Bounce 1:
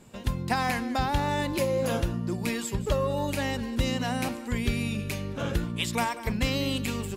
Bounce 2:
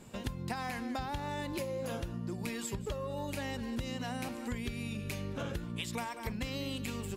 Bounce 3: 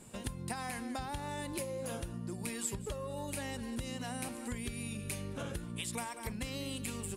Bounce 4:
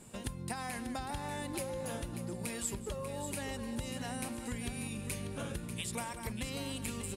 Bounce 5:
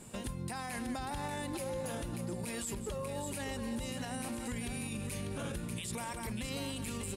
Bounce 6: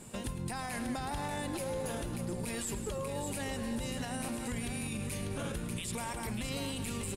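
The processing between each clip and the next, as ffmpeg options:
-af "acompressor=threshold=-34dB:ratio=10"
-af "equalizer=f=9.4k:w=2.1:g=15,volume=-2.5dB"
-af "aecho=1:1:591|1182|1773|2364:0.335|0.107|0.0343|0.011"
-af "alimiter=level_in=9dB:limit=-24dB:level=0:latency=1:release=21,volume=-9dB,volume=3dB"
-filter_complex "[0:a]asplit=8[a][b][c][d][e][f][g][h];[b]adelay=108,afreqshift=-92,volume=-13dB[i];[c]adelay=216,afreqshift=-184,volume=-17.2dB[j];[d]adelay=324,afreqshift=-276,volume=-21.3dB[k];[e]adelay=432,afreqshift=-368,volume=-25.5dB[l];[f]adelay=540,afreqshift=-460,volume=-29.6dB[m];[g]adelay=648,afreqshift=-552,volume=-33.8dB[n];[h]adelay=756,afreqshift=-644,volume=-37.9dB[o];[a][i][j][k][l][m][n][o]amix=inputs=8:normalize=0,volume=1.5dB"

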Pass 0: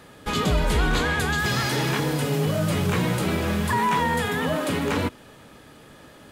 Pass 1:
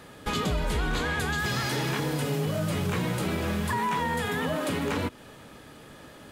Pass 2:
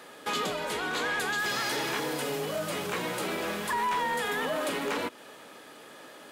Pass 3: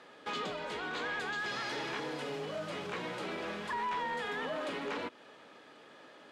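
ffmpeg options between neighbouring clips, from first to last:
-af "acompressor=threshold=-27dB:ratio=2.5"
-filter_complex "[0:a]highpass=360,asplit=2[a][b];[b]aeval=exprs='0.119*sin(PI/2*2*val(0)/0.119)':c=same,volume=-10dB[c];[a][c]amix=inputs=2:normalize=0,volume=-4.5dB"
-af "lowpass=4.7k,volume=-6.5dB"

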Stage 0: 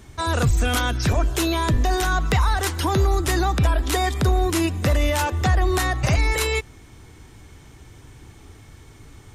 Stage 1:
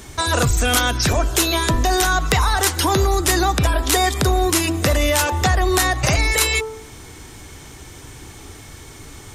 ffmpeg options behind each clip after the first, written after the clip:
-filter_complex "[0:a]bass=f=250:g=-5,treble=f=4k:g=5,bandreject=f=110:t=h:w=4,bandreject=f=220:t=h:w=4,bandreject=f=330:t=h:w=4,bandreject=f=440:t=h:w=4,bandreject=f=550:t=h:w=4,bandreject=f=660:t=h:w=4,bandreject=f=770:t=h:w=4,bandreject=f=880:t=h:w=4,bandreject=f=990:t=h:w=4,bandreject=f=1.1k:t=h:w=4,bandreject=f=1.21k:t=h:w=4,bandreject=f=1.32k:t=h:w=4,bandreject=f=1.43k:t=h:w=4,asplit=2[a][b];[b]acompressor=threshold=-31dB:ratio=6,volume=1.5dB[c];[a][c]amix=inputs=2:normalize=0,volume=2.5dB"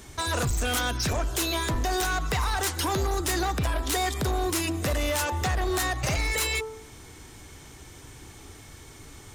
-af "asoftclip=type=hard:threshold=-15dB,volume=-7.5dB"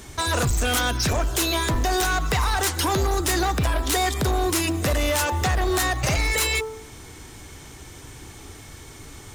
-af "acrusher=bits=8:mode=log:mix=0:aa=0.000001,volume=4.5dB"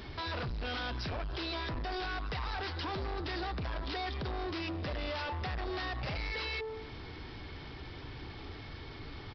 -af "acompressor=threshold=-30dB:ratio=2,aresample=11025,asoftclip=type=tanh:threshold=-32.5dB,aresample=44100,volume=-2dB"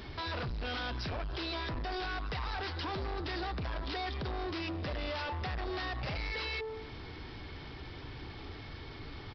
-af "aeval=exprs='0.0355*(cos(1*acos(clip(val(0)/0.0355,-1,1)))-cos(1*PI/2))+0.000316*(cos(2*acos(clip(val(0)/0.0355,-1,1)))-cos(2*PI/2))':c=same"

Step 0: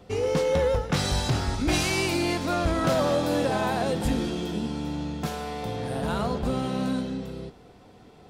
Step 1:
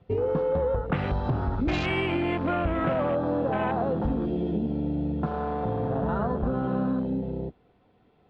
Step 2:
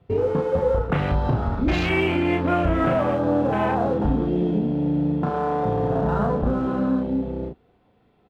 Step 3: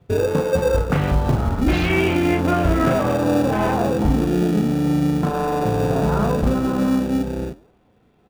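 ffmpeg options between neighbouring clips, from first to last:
-af "lowpass=f=3.5k:w=0.5412,lowpass=f=3.5k:w=1.3066,afwtdn=0.0224,acompressor=threshold=-28dB:ratio=6,volume=5dB"
-filter_complex "[0:a]asplit=2[a][b];[b]aeval=exprs='sgn(val(0))*max(abs(val(0))-0.00841,0)':c=same,volume=-6dB[c];[a][c]amix=inputs=2:normalize=0,asplit=2[d][e];[e]adelay=34,volume=-4dB[f];[d][f]amix=inputs=2:normalize=0"
-filter_complex "[0:a]flanger=delay=5.2:depth=7.9:regen=-89:speed=1.8:shape=sinusoidal,asplit=2[a][b];[b]acrusher=samples=42:mix=1:aa=0.000001,volume=-9dB[c];[a][c]amix=inputs=2:normalize=0,volume=6dB"

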